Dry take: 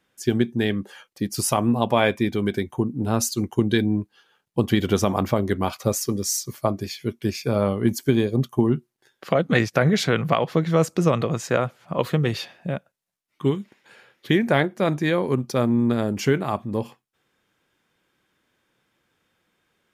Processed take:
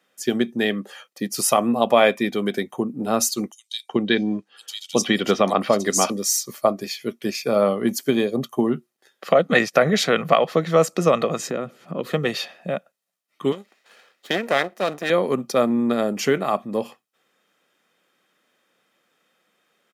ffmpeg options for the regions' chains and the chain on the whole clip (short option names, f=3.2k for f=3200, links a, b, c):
-filter_complex "[0:a]asettb=1/sr,asplit=3[a][b][c];[a]atrim=end=3.524[d];[b]atrim=start=3.52:end=6.1,asetpts=PTS-STARTPTS,afade=t=in:d=0.004:c=qsin,afade=t=out:st=2.576:d=0.004:c=qsin,lowpass=6.6k,highshelf=f=3.1k:g=9,acrossover=split=3900[e][f];[e]adelay=370[g];[g][f]amix=inputs=2:normalize=0,atrim=end_sample=113778[h];[c]atrim=start=6.096[i];[d][h]acrossfade=d=0.004:c1=hsin:c2=qsin[j];[j][i]acrossfade=d=0.004:c1=qsin:c2=hsin,asettb=1/sr,asplit=3[k][l][m];[k]atrim=end=11.394[n];[l]atrim=start=11.39:end=12.11,asetpts=PTS-STARTPTS,afade=t=in:d=0.004:c=qsin,afade=t=out:st=0.716:d=0.004:c=qsin,lowshelf=f=480:t=q:w=1.5:g=9.5,acompressor=threshold=-28dB:ratio=2.5:attack=3.2:release=140:knee=1:detection=peak[o];[m]atrim=start=12.106[p];[n][o]acrossfade=d=0.004:c1=hsin:c2=qsin[q];[q][p]acrossfade=d=0.004:c1=qsin:c2=hsin,asettb=1/sr,asplit=3[r][s][t];[r]atrim=end=13.524[u];[s]atrim=start=13.52:end=15.1,asetpts=PTS-STARTPTS,afade=t=in:d=0.004:c=qsin,afade=t=out:st=1.576:d=0.004:c=qsin,aeval=exprs='max(val(0),0)':c=same,lowshelf=f=180:g=-10.5[v];[t]atrim=start=15.096[w];[u][v]acrossfade=d=0.004:c1=hsin:c2=qsin[x];[x][w]acrossfade=d=0.004:c1=qsin:c2=hsin,highpass=f=200:w=0.5412,highpass=f=200:w=1.3066,aecho=1:1:1.6:0.39,volume=3dB"